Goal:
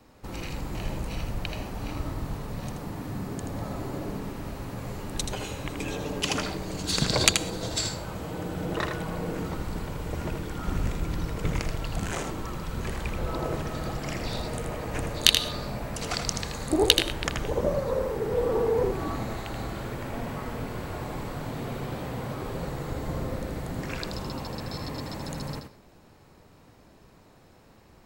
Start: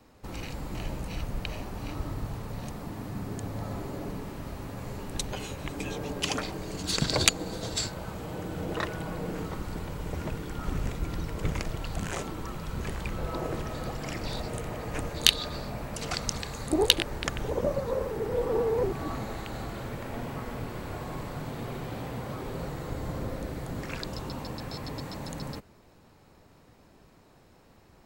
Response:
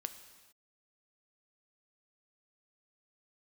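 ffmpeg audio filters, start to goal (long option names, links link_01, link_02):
-filter_complex "[0:a]asplit=2[link_01][link_02];[1:a]atrim=start_sample=2205,atrim=end_sample=6174,adelay=80[link_03];[link_02][link_03]afir=irnorm=-1:irlink=0,volume=-4dB[link_04];[link_01][link_04]amix=inputs=2:normalize=0,volume=1.5dB"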